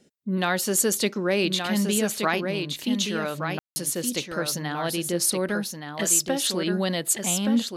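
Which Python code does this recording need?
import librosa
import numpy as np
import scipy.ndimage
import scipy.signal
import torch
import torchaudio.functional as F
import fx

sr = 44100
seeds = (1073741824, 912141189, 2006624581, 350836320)

y = fx.fix_ambience(x, sr, seeds[0], print_start_s=5.47, print_end_s=5.97, start_s=3.59, end_s=3.76)
y = fx.fix_echo_inverse(y, sr, delay_ms=1172, level_db=-6.0)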